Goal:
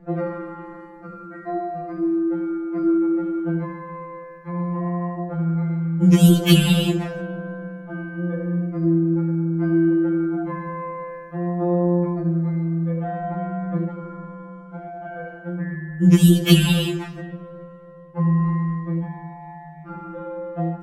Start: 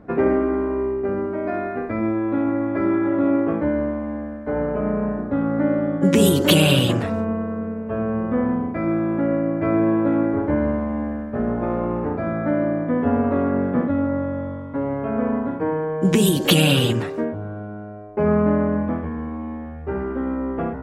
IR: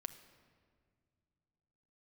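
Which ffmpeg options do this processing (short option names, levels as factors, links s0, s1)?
-filter_complex "[0:a]asettb=1/sr,asplit=3[s0][s1][s2];[s0]atrim=end=4.814[s3];[s1]atrim=start=4.81:end=5.78,asetpts=PTS-STARTPTS,afade=t=in:d=0.004:c=qsin,afade=t=out:st=0.966:d=0.004:c=qsin,equalizer=f=700:t=o:w=0.25:g=11.5[s4];[s2]atrim=start=5.776[s5];[s3][s4]acrossfade=d=0.004:c1=hsin:c2=qsin[s6];[s6][s5]acrossfade=d=0.004:c1=qsin:c2=hsin,asplit=2[s7][s8];[1:a]atrim=start_sample=2205,lowshelf=f=170:g=11[s9];[s8][s9]afir=irnorm=-1:irlink=0,volume=1.58[s10];[s7][s10]amix=inputs=2:normalize=0,afftfilt=real='re*2.83*eq(mod(b,8),0)':imag='im*2.83*eq(mod(b,8),0)':win_size=2048:overlap=0.75,volume=0.473"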